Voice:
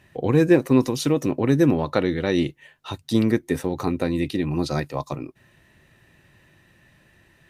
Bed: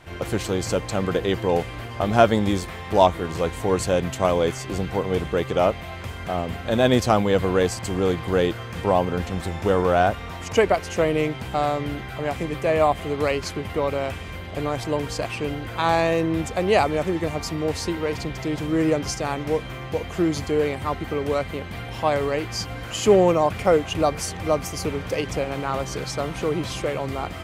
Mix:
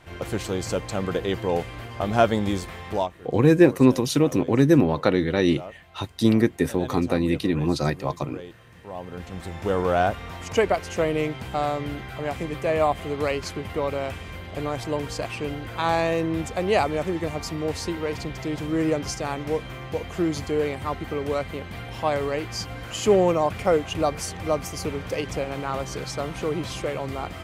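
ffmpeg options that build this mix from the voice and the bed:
-filter_complex "[0:a]adelay=3100,volume=1dB[a];[1:a]volume=13.5dB,afade=t=out:st=2.88:d=0.22:silence=0.158489,afade=t=in:st=8.89:d=1.01:silence=0.149624[b];[a][b]amix=inputs=2:normalize=0"

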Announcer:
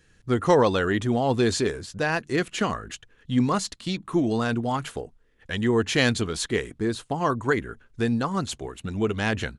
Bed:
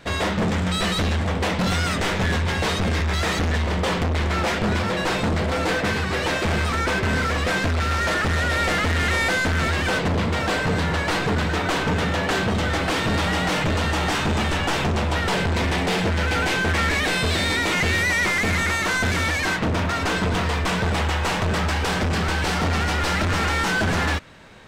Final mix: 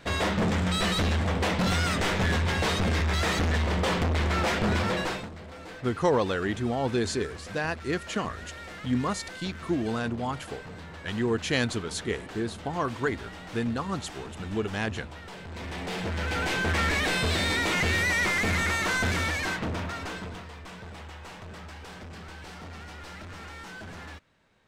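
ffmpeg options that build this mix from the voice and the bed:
-filter_complex "[0:a]adelay=5550,volume=-5dB[a];[1:a]volume=12.5dB,afade=t=out:st=4.93:d=0.36:silence=0.141254,afade=t=in:st=15.43:d=1.36:silence=0.158489,afade=t=out:st=19.04:d=1.42:silence=0.158489[b];[a][b]amix=inputs=2:normalize=0"

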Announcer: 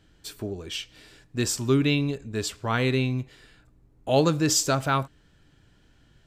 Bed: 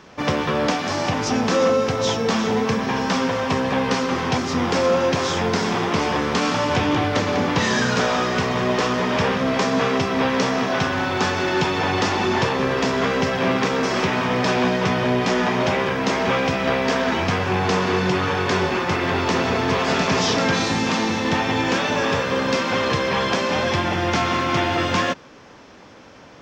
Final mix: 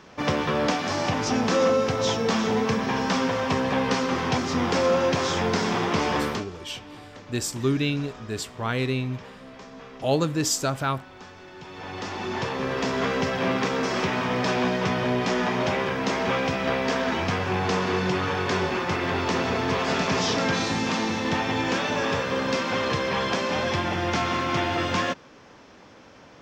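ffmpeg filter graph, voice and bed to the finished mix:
-filter_complex "[0:a]adelay=5950,volume=-2dB[a];[1:a]volume=16dB,afade=t=out:st=6.24:d=0.21:silence=0.0944061,afade=t=in:st=11.6:d=1.42:silence=0.112202[b];[a][b]amix=inputs=2:normalize=0"

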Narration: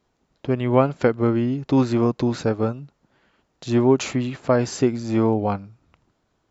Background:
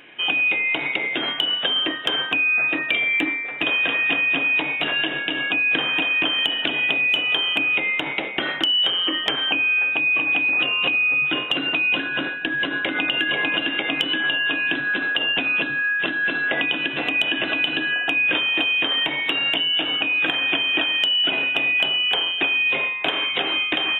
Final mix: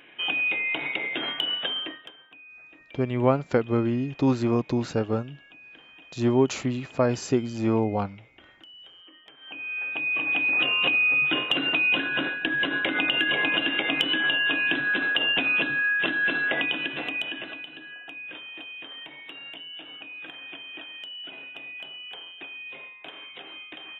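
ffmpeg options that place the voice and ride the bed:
-filter_complex "[0:a]adelay=2500,volume=-4dB[a];[1:a]volume=21.5dB,afade=t=out:st=1.57:d=0.56:silence=0.0668344,afade=t=in:st=9.39:d=1.31:silence=0.0446684,afade=t=out:st=16.29:d=1.38:silence=0.133352[b];[a][b]amix=inputs=2:normalize=0"

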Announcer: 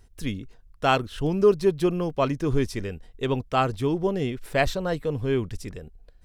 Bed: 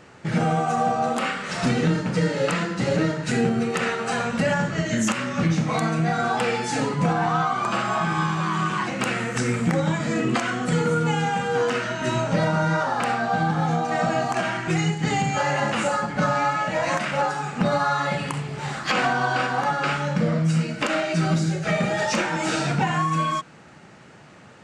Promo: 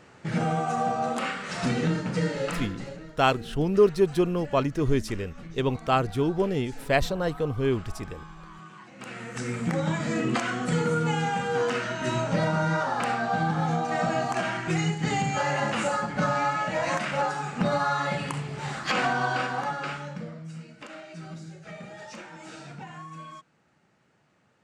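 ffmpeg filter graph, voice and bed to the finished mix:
-filter_complex "[0:a]adelay=2350,volume=-0.5dB[a];[1:a]volume=14dB,afade=t=out:st=2.26:d=0.74:silence=0.133352,afade=t=in:st=8.91:d=1.05:silence=0.11885,afade=t=out:st=19.25:d=1.1:silence=0.16788[b];[a][b]amix=inputs=2:normalize=0"

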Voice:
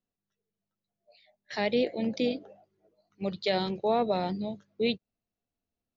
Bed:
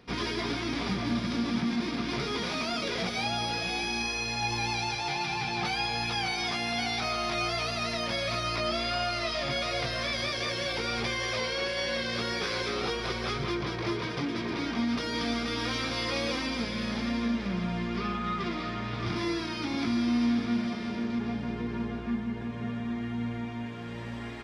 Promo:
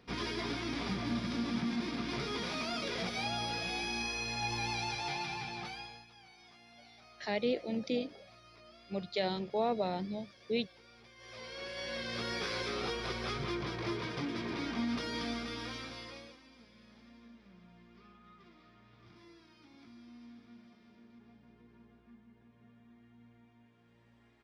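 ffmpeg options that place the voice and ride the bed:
-filter_complex "[0:a]adelay=5700,volume=-5.5dB[a];[1:a]volume=17dB,afade=t=out:st=5.08:d=0.98:silence=0.0749894,afade=t=in:st=11.15:d=1.19:silence=0.0749894,afade=t=out:st=15.02:d=1.35:silence=0.0794328[b];[a][b]amix=inputs=2:normalize=0"

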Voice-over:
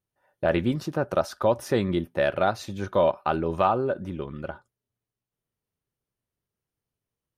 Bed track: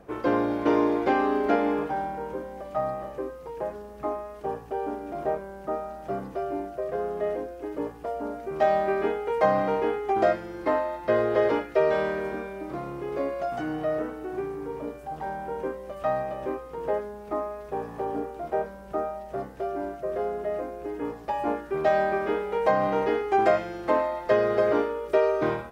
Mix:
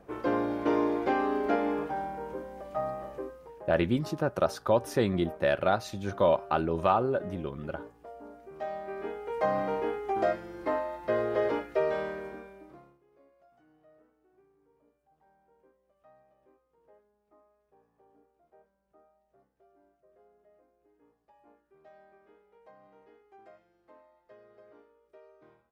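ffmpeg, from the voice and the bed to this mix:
-filter_complex "[0:a]adelay=3250,volume=-2.5dB[a];[1:a]volume=4.5dB,afade=t=out:st=3.16:d=0.47:silence=0.316228,afade=t=in:st=8.84:d=0.74:silence=0.354813,afade=t=out:st=11.79:d=1.2:silence=0.0375837[b];[a][b]amix=inputs=2:normalize=0"

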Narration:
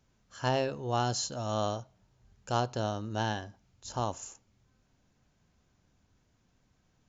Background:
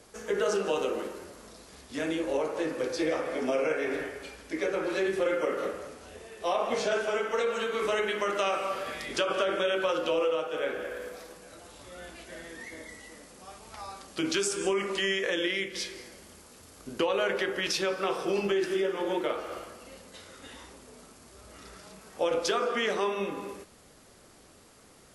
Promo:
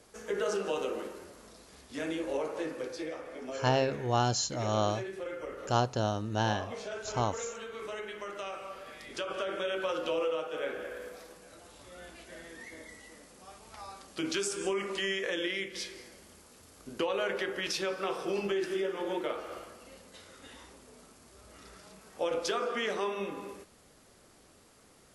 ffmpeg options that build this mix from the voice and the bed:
-filter_complex "[0:a]adelay=3200,volume=2dB[a];[1:a]volume=3.5dB,afade=t=out:st=2.55:d=0.61:silence=0.421697,afade=t=in:st=8.82:d=1.25:silence=0.421697[b];[a][b]amix=inputs=2:normalize=0"

